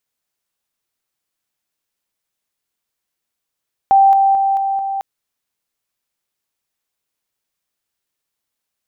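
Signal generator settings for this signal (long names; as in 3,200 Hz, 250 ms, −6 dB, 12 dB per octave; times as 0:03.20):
level staircase 783 Hz −6.5 dBFS, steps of −3 dB, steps 5, 0.22 s 0.00 s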